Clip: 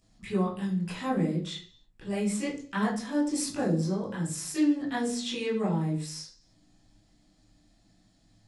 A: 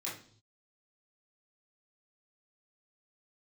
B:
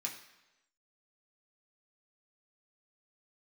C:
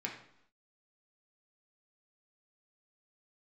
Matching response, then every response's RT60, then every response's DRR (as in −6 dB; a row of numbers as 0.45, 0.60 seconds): A; non-exponential decay, 1.0 s, 0.75 s; −8.0, −1.5, −1.0 decibels